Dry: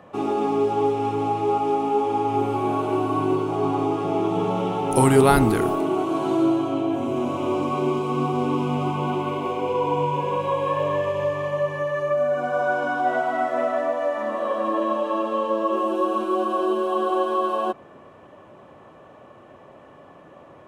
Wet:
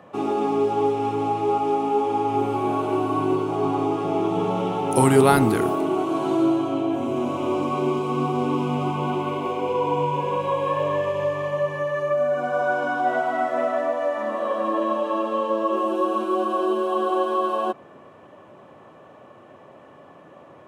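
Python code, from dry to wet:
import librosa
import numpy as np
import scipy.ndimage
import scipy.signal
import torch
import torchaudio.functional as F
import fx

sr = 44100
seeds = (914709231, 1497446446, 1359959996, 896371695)

y = scipy.signal.sosfilt(scipy.signal.butter(2, 93.0, 'highpass', fs=sr, output='sos'), x)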